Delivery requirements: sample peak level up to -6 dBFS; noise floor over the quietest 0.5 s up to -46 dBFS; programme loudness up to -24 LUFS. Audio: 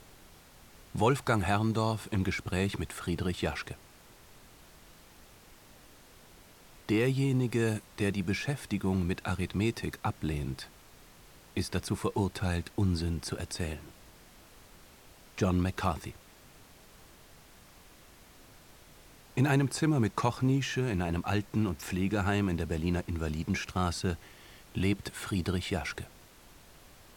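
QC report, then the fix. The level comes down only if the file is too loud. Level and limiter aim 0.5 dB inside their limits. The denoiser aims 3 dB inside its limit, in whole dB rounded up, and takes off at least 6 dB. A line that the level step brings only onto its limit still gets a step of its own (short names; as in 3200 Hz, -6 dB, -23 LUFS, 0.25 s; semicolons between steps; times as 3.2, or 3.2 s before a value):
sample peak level -14.0 dBFS: OK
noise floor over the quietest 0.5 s -56 dBFS: OK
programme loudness -31.5 LUFS: OK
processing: none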